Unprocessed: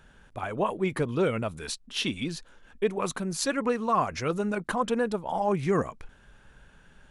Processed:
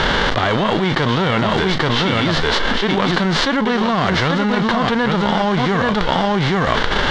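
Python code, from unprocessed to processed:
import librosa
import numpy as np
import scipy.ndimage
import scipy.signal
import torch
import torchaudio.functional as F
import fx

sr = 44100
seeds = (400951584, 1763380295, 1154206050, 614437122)

p1 = fx.envelope_flatten(x, sr, power=0.3)
p2 = scipy.signal.sosfilt(scipy.signal.butter(4, 3700.0, 'lowpass', fs=sr, output='sos'), p1)
p3 = fx.peak_eq(p2, sr, hz=2500.0, db=-13.0, octaves=0.21)
p4 = p3 + fx.echo_single(p3, sr, ms=833, db=-6.5, dry=0)
p5 = fx.env_flatten(p4, sr, amount_pct=100)
y = F.gain(torch.from_numpy(p5), 5.0).numpy()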